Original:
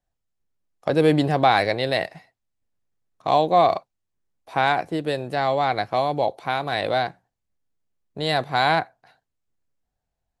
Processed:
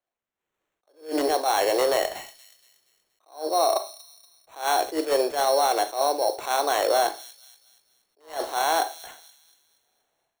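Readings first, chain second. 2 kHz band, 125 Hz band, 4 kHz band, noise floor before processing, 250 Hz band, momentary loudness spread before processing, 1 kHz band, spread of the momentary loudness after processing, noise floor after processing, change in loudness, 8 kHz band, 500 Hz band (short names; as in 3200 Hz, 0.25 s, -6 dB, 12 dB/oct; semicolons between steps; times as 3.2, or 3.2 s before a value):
-6.5 dB, under -25 dB, -1.0 dB, -81 dBFS, -7.5 dB, 11 LU, -3.0 dB, 15 LU, -85 dBFS, -2.0 dB, n/a, -1.5 dB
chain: steep high-pass 330 Hz 48 dB/oct; dynamic EQ 2400 Hz, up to -7 dB, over -39 dBFS, Q 1.2; reverse; compressor 5:1, threshold -27 dBFS, peak gain reduction 13 dB; reverse; limiter -25.5 dBFS, peak gain reduction 8.5 dB; AGC gain up to 15 dB; sample-and-hold 9×; on a send: thin delay 0.237 s, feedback 42%, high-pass 3800 Hz, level -11.5 dB; on the sum: Schroeder reverb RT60 0.34 s, combs from 28 ms, DRR 10.5 dB; attack slew limiter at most 180 dB/s; gain -3.5 dB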